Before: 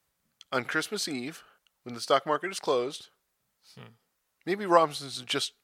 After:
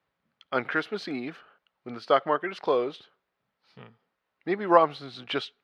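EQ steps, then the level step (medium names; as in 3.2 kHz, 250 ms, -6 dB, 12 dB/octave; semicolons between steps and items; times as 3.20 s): high-pass 190 Hz 6 dB/octave; distance through air 340 m; +4.0 dB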